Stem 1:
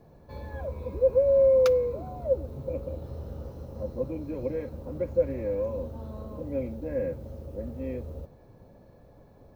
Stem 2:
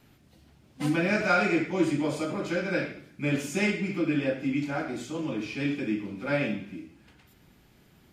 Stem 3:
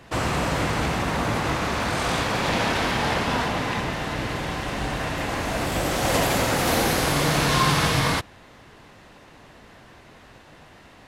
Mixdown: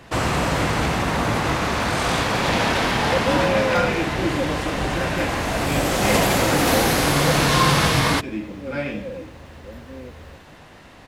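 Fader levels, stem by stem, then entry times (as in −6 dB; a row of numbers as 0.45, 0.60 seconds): −3.5, 0.0, +3.0 decibels; 2.10, 2.45, 0.00 seconds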